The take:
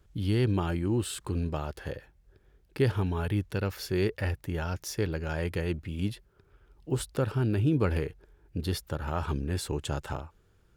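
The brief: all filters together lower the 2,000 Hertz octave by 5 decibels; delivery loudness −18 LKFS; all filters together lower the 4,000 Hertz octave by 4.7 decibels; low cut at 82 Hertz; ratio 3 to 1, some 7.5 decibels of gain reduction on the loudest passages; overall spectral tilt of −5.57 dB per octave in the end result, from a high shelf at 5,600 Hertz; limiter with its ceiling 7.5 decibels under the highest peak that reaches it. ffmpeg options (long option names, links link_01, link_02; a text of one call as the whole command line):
ffmpeg -i in.wav -af "highpass=82,equalizer=frequency=2000:width_type=o:gain=-6,equalizer=frequency=4000:width_type=o:gain=-8,highshelf=frequency=5600:gain=8.5,acompressor=threshold=-31dB:ratio=3,volume=20.5dB,alimiter=limit=-6dB:level=0:latency=1" out.wav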